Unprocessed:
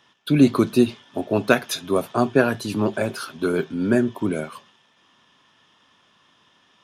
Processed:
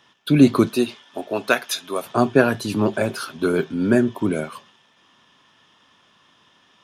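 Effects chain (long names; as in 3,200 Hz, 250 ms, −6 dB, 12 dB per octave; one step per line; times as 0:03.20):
0:00.68–0:02.05: high-pass filter 460 Hz → 1,000 Hz 6 dB per octave
level +2 dB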